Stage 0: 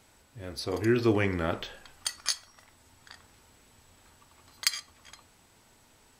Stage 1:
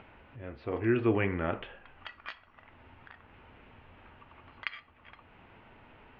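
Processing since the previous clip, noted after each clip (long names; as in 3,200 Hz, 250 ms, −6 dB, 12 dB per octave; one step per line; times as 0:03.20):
elliptic low-pass filter 2,800 Hz, stop band 80 dB
upward compression, threshold −44 dBFS
level −1.5 dB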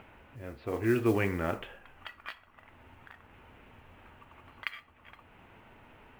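noise that follows the level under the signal 26 dB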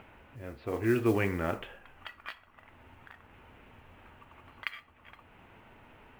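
no processing that can be heard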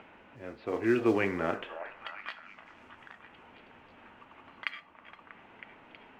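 three-way crossover with the lows and the highs turned down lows −14 dB, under 170 Hz, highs −20 dB, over 7,000 Hz
noise in a band 170–330 Hz −71 dBFS
echo through a band-pass that steps 320 ms, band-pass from 740 Hz, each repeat 0.7 octaves, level −7.5 dB
level +1.5 dB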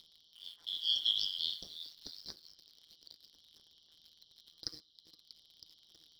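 band-splitting scrambler in four parts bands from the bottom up 3412
amplitude modulation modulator 160 Hz, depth 80%
in parallel at −7 dB: bit-depth reduction 8 bits, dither none
on the sum: level −6 dB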